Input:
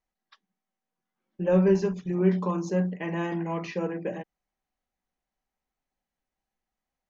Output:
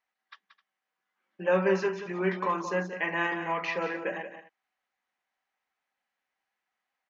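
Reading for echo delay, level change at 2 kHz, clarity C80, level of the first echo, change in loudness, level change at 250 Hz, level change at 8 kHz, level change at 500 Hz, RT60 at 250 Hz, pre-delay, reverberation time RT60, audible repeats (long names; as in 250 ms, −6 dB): 179 ms, +9.0 dB, no reverb audible, −10.0 dB, −2.5 dB, −8.0 dB, can't be measured, −2.0 dB, no reverb audible, no reverb audible, no reverb audible, 2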